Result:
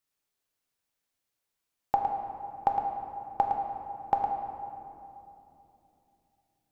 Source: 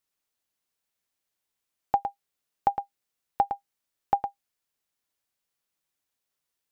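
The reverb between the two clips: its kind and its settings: simulated room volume 130 m³, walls hard, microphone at 0.31 m; trim -1.5 dB

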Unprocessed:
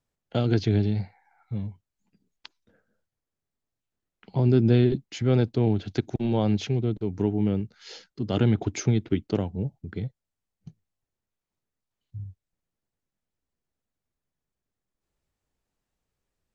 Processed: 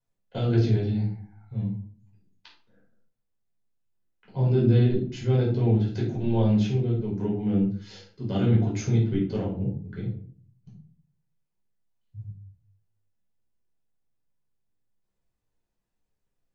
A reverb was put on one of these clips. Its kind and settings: simulated room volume 430 m³, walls furnished, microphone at 5 m; trim -11 dB

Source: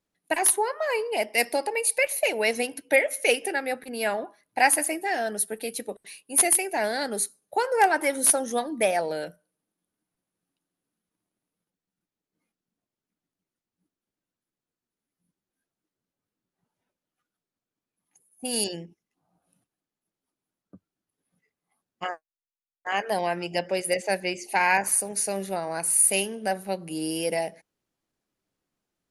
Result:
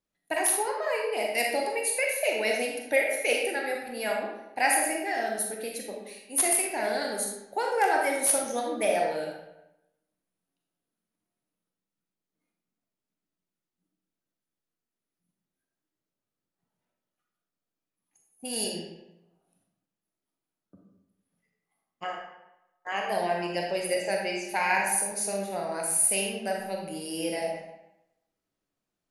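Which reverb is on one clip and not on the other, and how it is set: algorithmic reverb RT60 0.92 s, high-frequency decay 0.75×, pre-delay 0 ms, DRR -0.5 dB; trim -5.5 dB

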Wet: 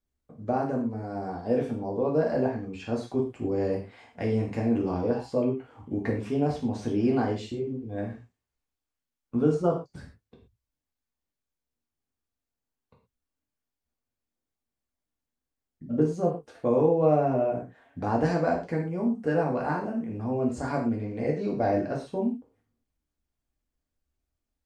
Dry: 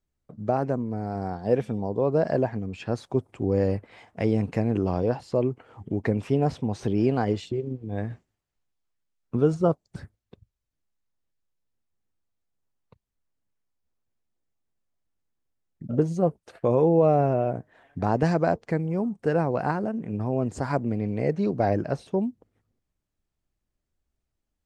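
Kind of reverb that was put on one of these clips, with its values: gated-style reverb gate 150 ms falling, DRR -2 dB; trim -6 dB

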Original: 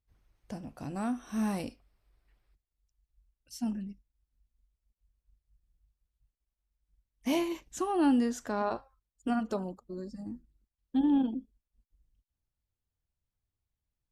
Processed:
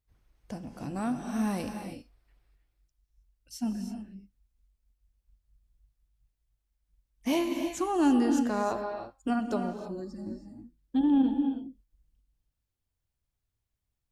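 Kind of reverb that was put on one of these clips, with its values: gated-style reverb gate 350 ms rising, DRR 6 dB; trim +1.5 dB

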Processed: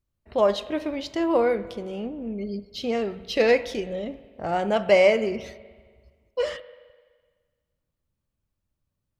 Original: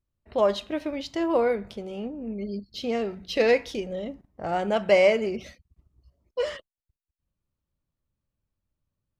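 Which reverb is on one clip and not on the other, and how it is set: spring tank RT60 1.6 s, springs 42/58 ms, chirp 60 ms, DRR 15 dB; trim +1.5 dB

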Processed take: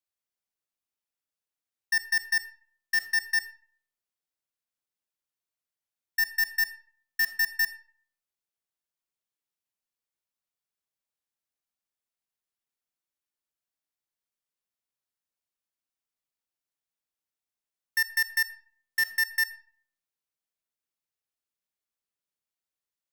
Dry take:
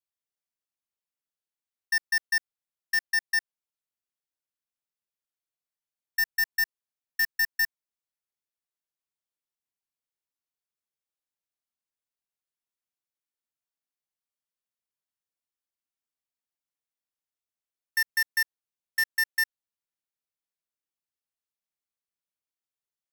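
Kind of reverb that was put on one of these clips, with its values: algorithmic reverb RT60 0.54 s, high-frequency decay 0.65×, pre-delay 5 ms, DRR 13 dB

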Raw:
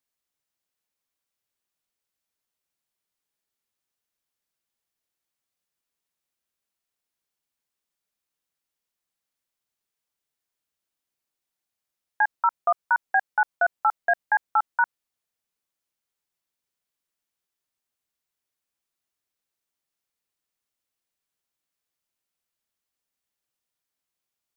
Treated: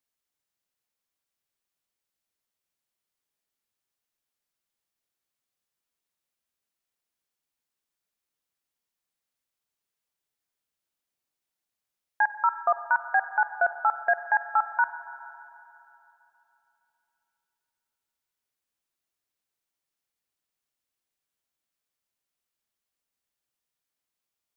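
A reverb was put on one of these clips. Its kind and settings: spring tank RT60 3.1 s, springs 45/57 ms, chirp 75 ms, DRR 11.5 dB; trim -1.5 dB

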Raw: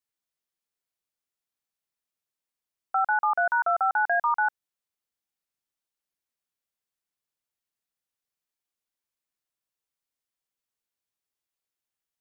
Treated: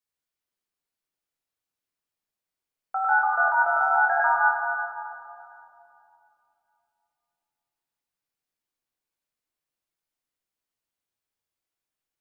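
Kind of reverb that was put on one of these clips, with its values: simulated room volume 120 m³, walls hard, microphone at 0.58 m; trim -3 dB

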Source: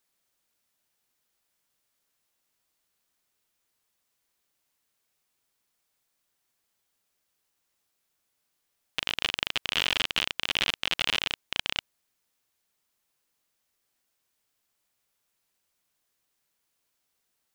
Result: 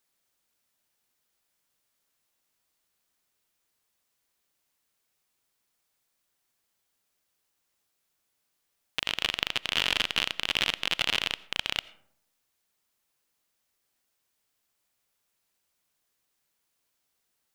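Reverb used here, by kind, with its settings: algorithmic reverb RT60 0.71 s, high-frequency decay 0.4×, pre-delay 45 ms, DRR 19.5 dB

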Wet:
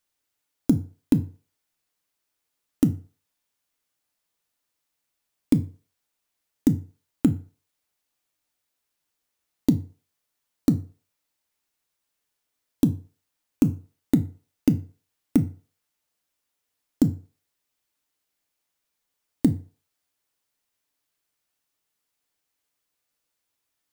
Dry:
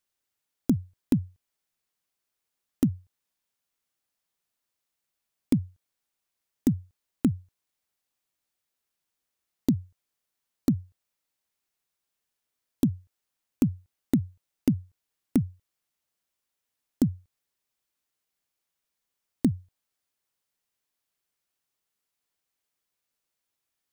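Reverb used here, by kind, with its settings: FDN reverb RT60 0.4 s, low-frequency decay 0.75×, high-frequency decay 0.75×, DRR 8 dB; trim +3 dB

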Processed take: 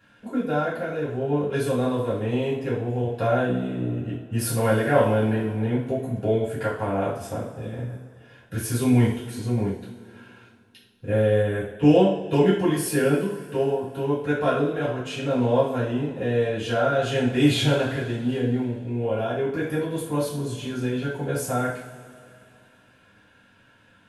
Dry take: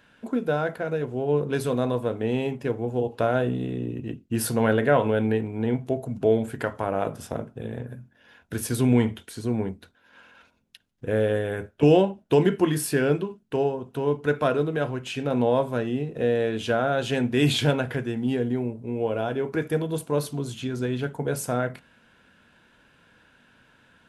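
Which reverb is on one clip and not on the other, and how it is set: two-slope reverb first 0.49 s, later 2.7 s, from -18 dB, DRR -8.5 dB; trim -8 dB

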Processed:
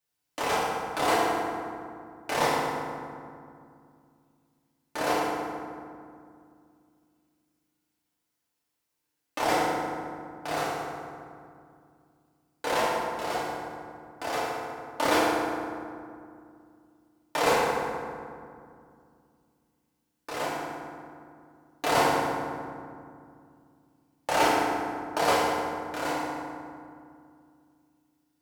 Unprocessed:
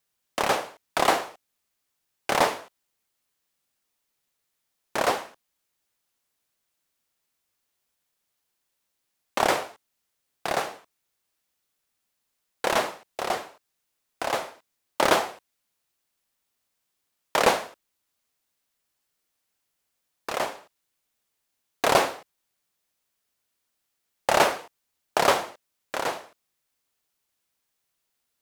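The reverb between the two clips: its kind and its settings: FDN reverb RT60 2.3 s, low-frequency decay 1.5×, high-frequency decay 0.5×, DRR -7.5 dB; trim -9.5 dB

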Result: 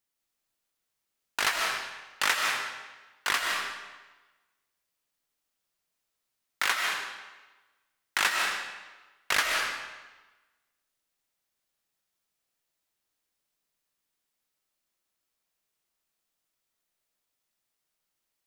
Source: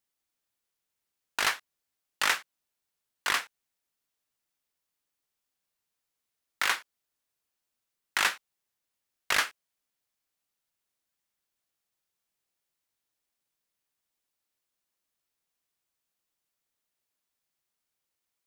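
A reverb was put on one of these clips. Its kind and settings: algorithmic reverb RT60 1.2 s, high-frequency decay 0.9×, pre-delay 105 ms, DRR 0.5 dB

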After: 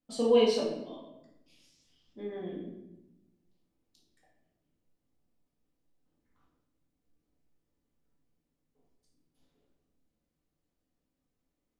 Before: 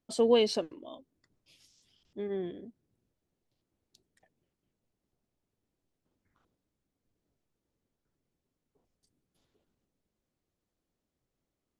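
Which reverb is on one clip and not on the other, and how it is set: simulated room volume 320 m³, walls mixed, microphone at 2 m; trim -6.5 dB

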